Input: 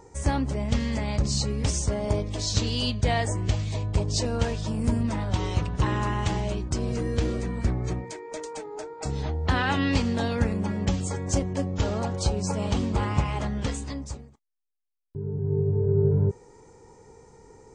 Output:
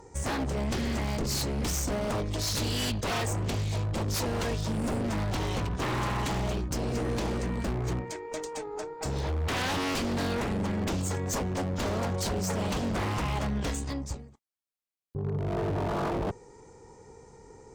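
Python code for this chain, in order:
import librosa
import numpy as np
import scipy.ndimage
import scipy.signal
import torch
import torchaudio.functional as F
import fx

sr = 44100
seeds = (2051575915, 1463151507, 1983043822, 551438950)

y = 10.0 ** (-24.5 / 20.0) * (np.abs((x / 10.0 ** (-24.5 / 20.0) + 3.0) % 4.0 - 2.0) - 1.0)
y = fx.cheby_harmonics(y, sr, harmonics=(4,), levels_db=(-19,), full_scale_db=-24.5)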